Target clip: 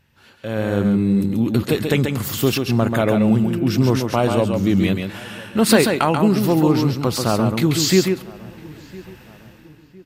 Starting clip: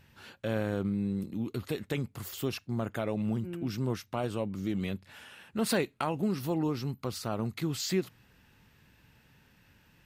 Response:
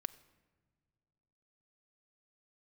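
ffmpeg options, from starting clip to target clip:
-filter_complex "[0:a]dynaudnorm=f=120:g=11:m=16.5dB,asplit=2[a][b];[b]adelay=1007,lowpass=f=1.7k:p=1,volume=-21.5dB,asplit=2[c][d];[d]adelay=1007,lowpass=f=1.7k:p=1,volume=0.44,asplit=2[e][f];[f]adelay=1007,lowpass=f=1.7k:p=1,volume=0.44[g];[a][c][e][g]amix=inputs=4:normalize=0,asplit=2[h][i];[1:a]atrim=start_sample=2205,adelay=136[j];[i][j]afir=irnorm=-1:irlink=0,volume=-3dB[k];[h][k]amix=inputs=2:normalize=0,volume=-1dB"

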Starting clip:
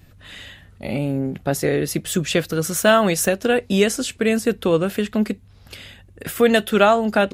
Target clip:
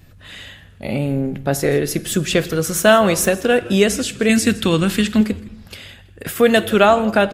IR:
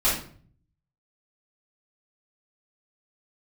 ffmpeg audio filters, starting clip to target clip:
-filter_complex "[0:a]asettb=1/sr,asplit=3[a][b][c];[a]atrim=end=4.294[d];[b]atrim=start=4.29:end=5.21,asetpts=PTS-STARTPTS,afade=t=in:d=0.004:c=qsin,afade=t=out:st=0.916:d=0.004:c=qsin,equalizer=f=125:t=o:w=1:g=4,equalizer=f=250:t=o:w=1:g=5,equalizer=f=500:t=o:w=1:g=-8,equalizer=f=2k:t=o:w=1:g=4,equalizer=f=4k:t=o:w=1:g=7,equalizer=f=8k:t=o:w=1:g=8[e];[c]atrim=start=5.206[f];[d][e]acrossfade=d=0.004:c1=hsin:c2=qsin[g];[g][f]acrossfade=d=0.004:c1=qsin:c2=hsin,asplit=4[h][i][j][k];[i]adelay=163,afreqshift=-130,volume=-19.5dB[l];[j]adelay=326,afreqshift=-260,volume=-29.4dB[m];[k]adelay=489,afreqshift=-390,volume=-39.3dB[n];[h][l][m][n]amix=inputs=4:normalize=0,asplit=2[o][p];[1:a]atrim=start_sample=2205,asetrate=26460,aresample=44100[q];[p][q]afir=irnorm=-1:irlink=0,volume=-31.5dB[r];[o][r]amix=inputs=2:normalize=0,volume=2dB"

